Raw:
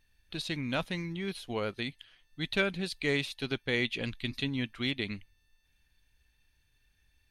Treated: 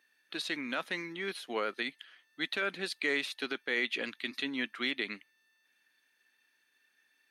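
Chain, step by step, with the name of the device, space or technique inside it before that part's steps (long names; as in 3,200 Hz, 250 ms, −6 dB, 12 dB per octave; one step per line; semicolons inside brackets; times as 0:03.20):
laptop speaker (high-pass filter 260 Hz 24 dB per octave; parametric band 1,300 Hz +5.5 dB 0.49 octaves; parametric band 1,800 Hz +6 dB 0.55 octaves; brickwall limiter −20.5 dBFS, peak gain reduction 11 dB)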